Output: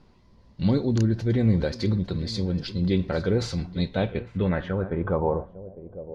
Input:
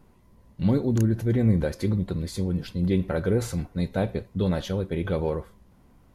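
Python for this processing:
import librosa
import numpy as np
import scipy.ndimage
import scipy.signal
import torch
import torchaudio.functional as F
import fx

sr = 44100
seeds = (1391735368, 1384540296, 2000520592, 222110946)

y = fx.echo_feedback(x, sr, ms=853, feedback_pct=21, wet_db=-17)
y = fx.filter_sweep_lowpass(y, sr, from_hz=4700.0, to_hz=590.0, start_s=3.68, end_s=5.71, q=2.8)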